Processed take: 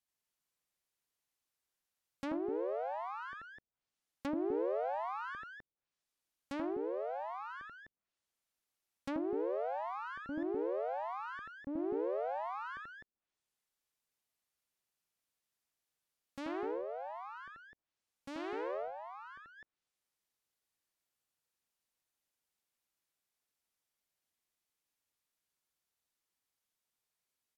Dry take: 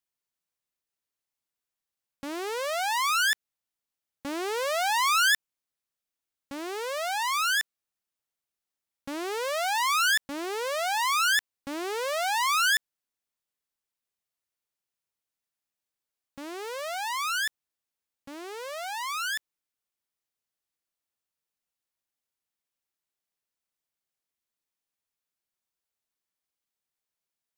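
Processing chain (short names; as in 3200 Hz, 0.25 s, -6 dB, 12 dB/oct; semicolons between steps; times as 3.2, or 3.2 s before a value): loudspeakers at several distances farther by 29 m -1 dB, 87 m -3 dB; treble ducked by the level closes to 440 Hz, closed at -28.5 dBFS; gain -2.5 dB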